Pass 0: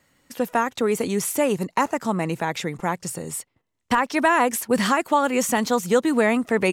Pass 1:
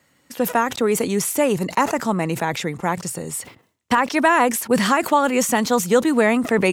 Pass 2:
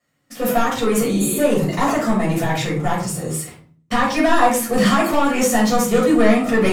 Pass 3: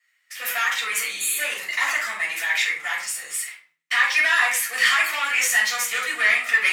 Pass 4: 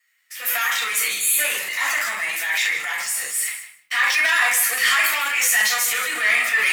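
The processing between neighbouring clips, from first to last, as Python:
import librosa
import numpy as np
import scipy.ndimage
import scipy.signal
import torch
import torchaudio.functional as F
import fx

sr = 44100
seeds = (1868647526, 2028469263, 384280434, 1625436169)

y1 = scipy.signal.sosfilt(scipy.signal.butter(2, 73.0, 'highpass', fs=sr, output='sos'), x)
y1 = fx.sustainer(y1, sr, db_per_s=130.0)
y1 = y1 * 10.0 ** (2.5 / 20.0)
y2 = fx.spec_repair(y1, sr, seeds[0], start_s=1.13, length_s=0.22, low_hz=230.0, high_hz=6600.0, source='before')
y2 = fx.leveller(y2, sr, passes=2)
y2 = fx.room_shoebox(y2, sr, seeds[1], volume_m3=340.0, walls='furnished', distance_m=6.2)
y2 = y2 * 10.0 ** (-14.0 / 20.0)
y3 = fx.highpass_res(y2, sr, hz=2000.0, q=3.0)
y4 = fx.high_shelf(y3, sr, hz=10000.0, db=11.5)
y4 = fx.transient(y4, sr, attack_db=-3, sustain_db=7)
y4 = fx.echo_feedback(y4, sr, ms=154, feedback_pct=15, wet_db=-12)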